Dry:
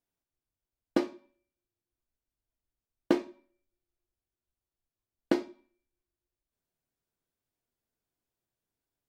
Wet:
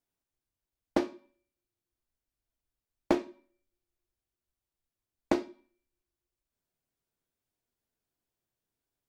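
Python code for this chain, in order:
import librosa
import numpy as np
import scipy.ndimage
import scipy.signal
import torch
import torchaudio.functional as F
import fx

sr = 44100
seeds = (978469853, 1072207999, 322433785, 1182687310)

y = fx.doppler_dist(x, sr, depth_ms=0.48)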